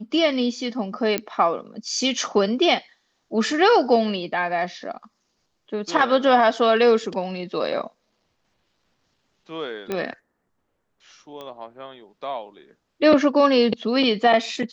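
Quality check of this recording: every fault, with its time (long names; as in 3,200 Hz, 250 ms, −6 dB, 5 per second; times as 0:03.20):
0:01.18: click −8 dBFS
0:09.92: click −13 dBFS
0:11.41: click −23 dBFS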